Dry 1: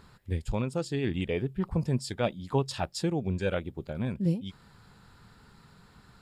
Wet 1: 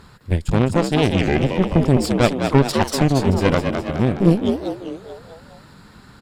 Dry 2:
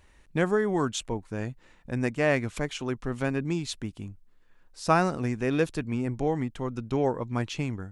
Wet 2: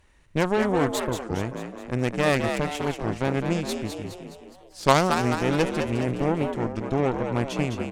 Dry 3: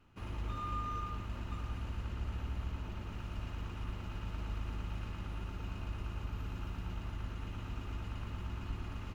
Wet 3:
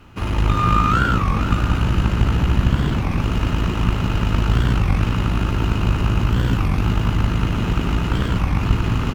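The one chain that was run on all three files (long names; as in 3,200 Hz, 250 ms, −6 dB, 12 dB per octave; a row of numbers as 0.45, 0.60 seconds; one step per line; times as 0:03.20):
harmonic generator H 3 −15 dB, 6 −23 dB, 8 −18 dB, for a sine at −9 dBFS
echo with shifted repeats 208 ms, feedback 52%, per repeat +64 Hz, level −6.5 dB
wow of a warped record 33 1/3 rpm, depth 250 cents
normalise the peak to −1.5 dBFS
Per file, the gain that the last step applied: +16.0, +6.0, +26.5 decibels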